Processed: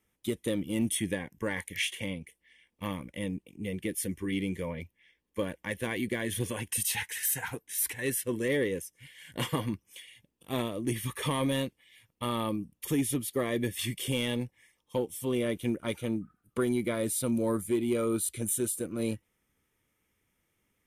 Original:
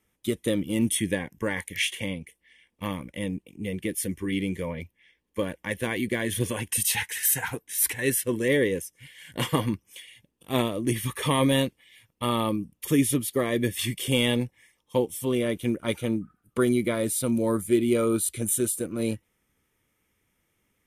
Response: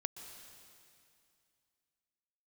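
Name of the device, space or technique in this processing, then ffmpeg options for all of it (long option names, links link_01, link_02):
soft clipper into limiter: -af "asoftclip=type=tanh:threshold=-11dB,alimiter=limit=-16dB:level=0:latency=1:release=453,volume=-3.5dB"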